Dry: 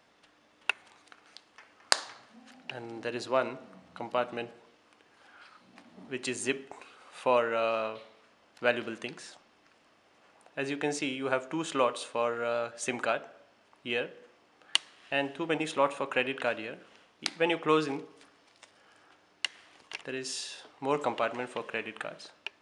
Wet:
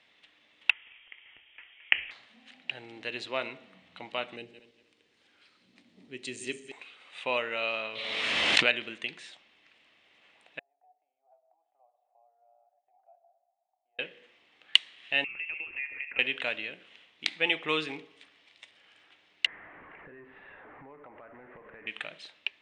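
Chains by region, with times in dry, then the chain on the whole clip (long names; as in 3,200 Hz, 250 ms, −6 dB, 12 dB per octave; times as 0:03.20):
0:00.70–0:02.11: voice inversion scrambler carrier 3,500 Hz + parametric band 170 Hz −14.5 dB 0.52 octaves
0:04.36–0:06.72: feedback delay that plays each chunk backwards 118 ms, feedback 49%, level −11 dB + flat-topped bell 1,500 Hz −10 dB 2.8 octaves
0:07.90–0:08.72: high-shelf EQ 3,500 Hz +5.5 dB + background raised ahead of every attack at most 23 dB per second
0:10.59–0:13.99: downward compressor 3 to 1, threshold −45 dBFS + flat-topped band-pass 730 Hz, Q 6.7
0:15.24–0:16.19: high-pass filter 230 Hz + downward compressor 4 to 1, threshold −40 dBFS + voice inversion scrambler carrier 3,000 Hz
0:19.46–0:21.87: converter with a step at zero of −33 dBFS + Butterworth low-pass 1,700 Hz + downward compressor 4 to 1, threshold −44 dBFS
whole clip: Chebyshev low-pass filter 8,900 Hz, order 4; flat-topped bell 2,700 Hz +12 dB 1.3 octaves; level −5.5 dB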